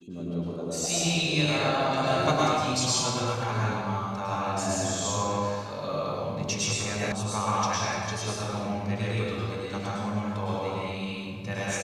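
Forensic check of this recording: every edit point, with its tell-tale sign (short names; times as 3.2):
7.12 sound cut off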